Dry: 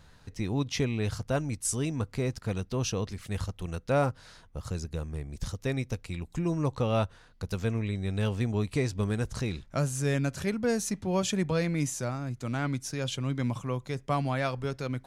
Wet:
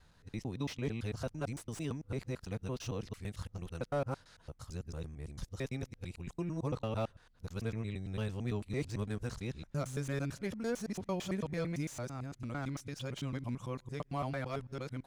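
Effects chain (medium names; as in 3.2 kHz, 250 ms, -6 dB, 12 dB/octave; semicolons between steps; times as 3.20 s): time reversed locally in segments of 112 ms; slew-rate limiter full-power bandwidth 75 Hz; trim -8 dB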